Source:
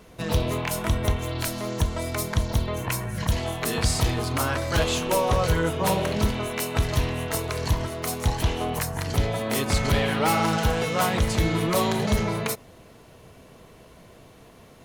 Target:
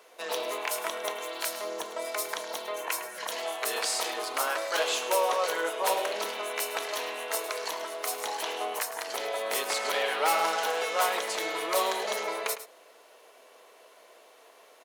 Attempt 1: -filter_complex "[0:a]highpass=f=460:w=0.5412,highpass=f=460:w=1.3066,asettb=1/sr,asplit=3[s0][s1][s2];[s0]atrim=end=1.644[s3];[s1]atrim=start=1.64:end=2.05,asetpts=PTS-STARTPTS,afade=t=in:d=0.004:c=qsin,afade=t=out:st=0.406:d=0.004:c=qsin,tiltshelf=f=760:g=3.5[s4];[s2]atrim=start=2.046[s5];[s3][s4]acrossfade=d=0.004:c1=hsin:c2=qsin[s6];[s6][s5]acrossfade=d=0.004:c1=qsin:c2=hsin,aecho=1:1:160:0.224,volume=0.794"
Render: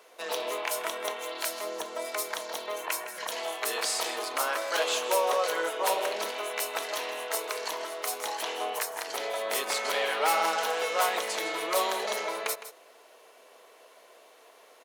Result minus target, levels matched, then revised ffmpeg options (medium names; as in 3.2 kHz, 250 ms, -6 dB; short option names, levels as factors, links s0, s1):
echo 54 ms late
-filter_complex "[0:a]highpass=f=460:w=0.5412,highpass=f=460:w=1.3066,asettb=1/sr,asplit=3[s0][s1][s2];[s0]atrim=end=1.644[s3];[s1]atrim=start=1.64:end=2.05,asetpts=PTS-STARTPTS,afade=t=in:d=0.004:c=qsin,afade=t=out:st=0.406:d=0.004:c=qsin,tiltshelf=f=760:g=3.5[s4];[s2]atrim=start=2.046[s5];[s3][s4]acrossfade=d=0.004:c1=hsin:c2=qsin[s6];[s6][s5]acrossfade=d=0.004:c1=qsin:c2=hsin,aecho=1:1:106:0.224,volume=0.794"